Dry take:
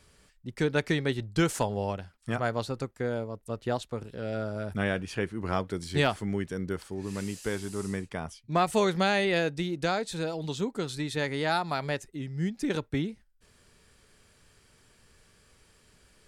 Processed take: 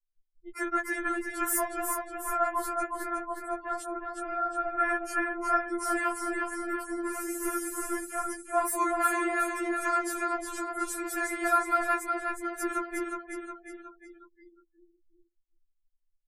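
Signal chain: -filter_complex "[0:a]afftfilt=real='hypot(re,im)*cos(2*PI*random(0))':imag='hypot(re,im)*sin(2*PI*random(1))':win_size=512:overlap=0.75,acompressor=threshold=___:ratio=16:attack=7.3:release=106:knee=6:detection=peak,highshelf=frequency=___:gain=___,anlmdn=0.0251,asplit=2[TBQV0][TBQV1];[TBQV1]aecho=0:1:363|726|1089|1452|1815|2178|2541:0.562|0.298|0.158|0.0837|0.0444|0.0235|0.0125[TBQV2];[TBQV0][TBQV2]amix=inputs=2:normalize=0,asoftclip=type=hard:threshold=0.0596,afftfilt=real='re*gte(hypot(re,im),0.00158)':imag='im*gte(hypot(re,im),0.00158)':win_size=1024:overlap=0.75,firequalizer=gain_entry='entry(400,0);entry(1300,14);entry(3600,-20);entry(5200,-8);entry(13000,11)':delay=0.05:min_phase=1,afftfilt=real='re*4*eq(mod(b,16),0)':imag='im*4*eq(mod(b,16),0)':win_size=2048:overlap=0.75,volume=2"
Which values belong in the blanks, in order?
0.0224, 3900, 11.5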